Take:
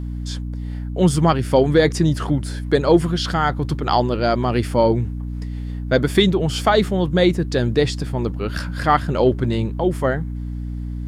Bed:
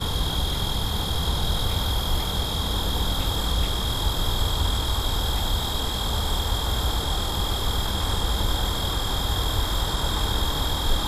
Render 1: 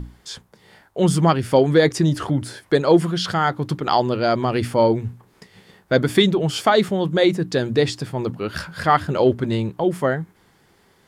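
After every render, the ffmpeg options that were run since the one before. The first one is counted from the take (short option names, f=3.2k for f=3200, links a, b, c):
-af "bandreject=f=60:t=h:w=6,bandreject=f=120:t=h:w=6,bandreject=f=180:t=h:w=6,bandreject=f=240:t=h:w=6,bandreject=f=300:t=h:w=6"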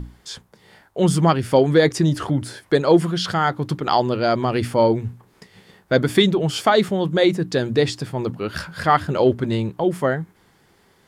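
-af anull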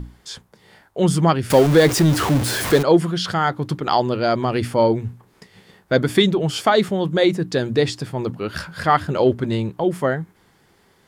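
-filter_complex "[0:a]asettb=1/sr,asplit=3[a][b][c];[a]atrim=end=1.504[d];[b]atrim=start=1.5:end=2.83,asetpts=PTS-STARTPTS,afade=t=in:d=0.004:c=qsin,afade=t=out:st=1.326:d=0.004:c=qsin,aeval=exprs='val(0)+0.5*0.119*sgn(val(0))':c=same[e];[c]atrim=start=2.826[f];[d][e]acrossfade=d=0.004:c1=hsin:c2=qsin[g];[g][f]acrossfade=d=0.004:c1=qsin:c2=hsin"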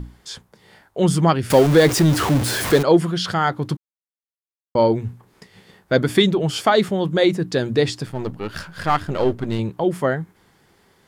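-filter_complex "[0:a]asettb=1/sr,asplit=3[a][b][c];[a]atrim=end=8.064[d];[b]atrim=start=8.06:end=9.59,asetpts=PTS-STARTPTS,afade=t=in:d=0.004:c=qsin,afade=t=out:st=1.526:d=0.004:c=qsin,aeval=exprs='if(lt(val(0),0),0.447*val(0),val(0))':c=same[e];[c]atrim=start=9.586[f];[d][e]acrossfade=d=0.004:c1=hsin:c2=qsin[g];[g][f]acrossfade=d=0.004:c1=qsin:c2=hsin,asplit=3[h][i][j];[h]atrim=end=3.77,asetpts=PTS-STARTPTS,afade=t=out:st=3.766:d=0.004:c=hsin[k];[i]atrim=start=3.77:end=4.75,asetpts=PTS-STARTPTS,volume=0[l];[j]atrim=start=4.75,asetpts=PTS-STARTPTS,afade=t=in:d=0.004:c=hsin[m];[k][l][m]concat=n=3:v=0:a=1"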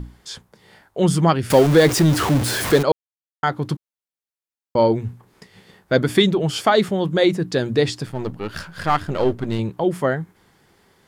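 -filter_complex "[0:a]asplit=3[a][b][c];[a]atrim=end=2.92,asetpts=PTS-STARTPTS,afade=t=out:st=2.916:d=0.004:c=hsin[d];[b]atrim=start=2.92:end=3.43,asetpts=PTS-STARTPTS,volume=0[e];[c]atrim=start=3.43,asetpts=PTS-STARTPTS,afade=t=in:d=0.004:c=hsin[f];[d][e][f]concat=n=3:v=0:a=1"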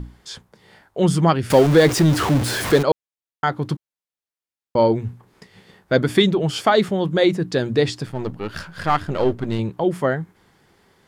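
-af "highshelf=f=7.6k:g=-4.5"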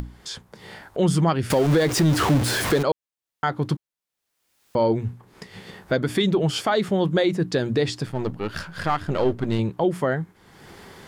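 -af "alimiter=limit=-11.5dB:level=0:latency=1:release=127,acompressor=mode=upward:threshold=-31dB:ratio=2.5"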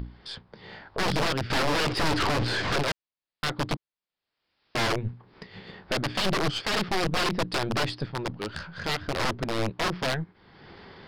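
-af "aresample=11025,aeval=exprs='(mod(7.08*val(0)+1,2)-1)/7.08':c=same,aresample=44100,aeval=exprs='(tanh(11.2*val(0)+0.6)-tanh(0.6))/11.2':c=same"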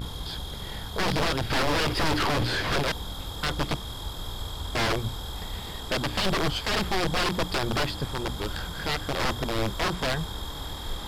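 -filter_complex "[1:a]volume=-11dB[a];[0:a][a]amix=inputs=2:normalize=0"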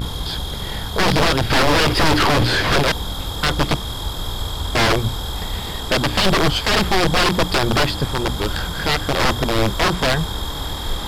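-af "volume=9.5dB"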